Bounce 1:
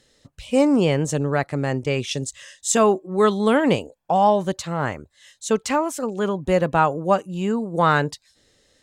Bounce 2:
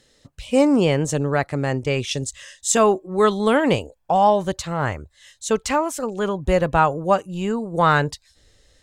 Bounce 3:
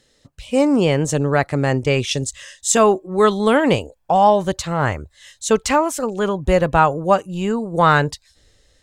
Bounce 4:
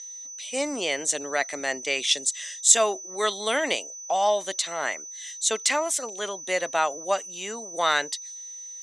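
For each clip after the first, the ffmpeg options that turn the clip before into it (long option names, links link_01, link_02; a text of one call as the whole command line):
ffmpeg -i in.wav -af "asubboost=boost=5:cutoff=86,volume=1.5dB" out.wav
ffmpeg -i in.wav -af "dynaudnorm=framelen=180:gausssize=9:maxgain=11.5dB,volume=-1dB" out.wav
ffmpeg -i in.wav -af "crystalizer=i=7.5:c=0,aeval=exprs='val(0)+0.0794*sin(2*PI*6000*n/s)':channel_layout=same,highpass=frequency=260:width=0.5412,highpass=frequency=260:width=1.3066,equalizer=frequency=660:width_type=q:width=4:gain=8,equalizer=frequency=2000:width_type=q:width=4:gain=9,equalizer=frequency=3600:width_type=q:width=4:gain=7,lowpass=frequency=9600:width=0.5412,lowpass=frequency=9600:width=1.3066,volume=-15.5dB" out.wav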